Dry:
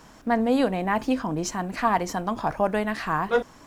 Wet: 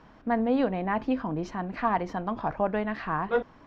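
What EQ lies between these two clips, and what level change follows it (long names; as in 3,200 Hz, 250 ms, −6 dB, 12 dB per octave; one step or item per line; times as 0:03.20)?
high-frequency loss of the air 280 metres
−2.5 dB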